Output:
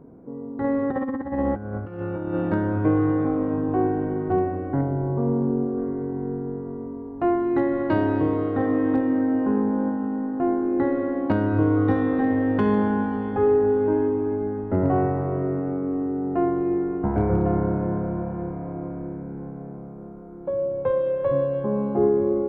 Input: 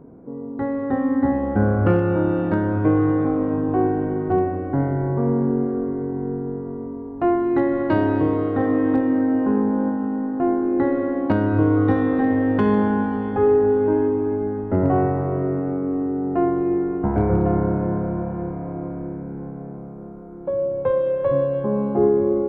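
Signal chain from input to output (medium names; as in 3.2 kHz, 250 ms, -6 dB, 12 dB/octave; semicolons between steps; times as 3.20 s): 0.64–2.35 s: compressor with a negative ratio -23 dBFS, ratio -0.5; 4.81–5.78 s: peaking EQ 1.9 kHz -10.5 dB 0.78 oct; trim -2.5 dB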